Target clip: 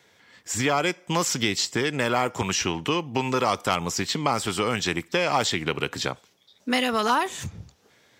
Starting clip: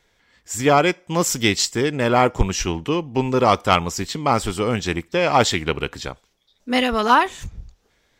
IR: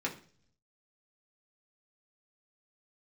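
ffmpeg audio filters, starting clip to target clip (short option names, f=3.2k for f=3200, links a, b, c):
-filter_complex "[0:a]highpass=f=98:w=0.5412,highpass=f=98:w=1.3066,asplit=2[a][b];[b]alimiter=limit=-10.5dB:level=0:latency=1,volume=-2dB[c];[a][c]amix=inputs=2:normalize=0,acrossover=split=860|5500[d][e][f];[d]acompressor=threshold=-26dB:ratio=4[g];[e]acompressor=threshold=-25dB:ratio=4[h];[f]acompressor=threshold=-35dB:ratio=4[i];[g][h][i]amix=inputs=3:normalize=0"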